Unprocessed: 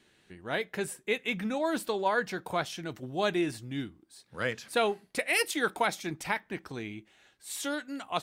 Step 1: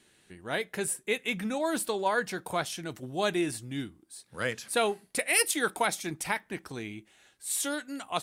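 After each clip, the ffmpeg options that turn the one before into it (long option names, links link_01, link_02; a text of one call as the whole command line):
ffmpeg -i in.wav -af "equalizer=frequency=10000:width=0.96:gain=10.5" out.wav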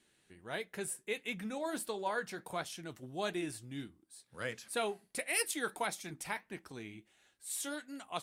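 ffmpeg -i in.wav -af "flanger=delay=3.1:depth=5.3:regen=-74:speed=1.5:shape=triangular,volume=-4dB" out.wav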